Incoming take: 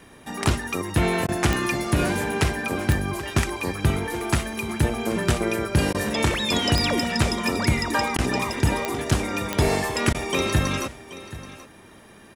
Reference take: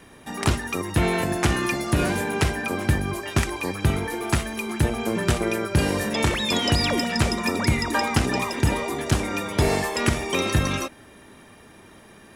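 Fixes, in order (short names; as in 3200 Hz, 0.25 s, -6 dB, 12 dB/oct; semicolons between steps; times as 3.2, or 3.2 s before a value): de-click; interpolate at 1.27/5.93/8.17/10.13, 14 ms; inverse comb 0.78 s -16 dB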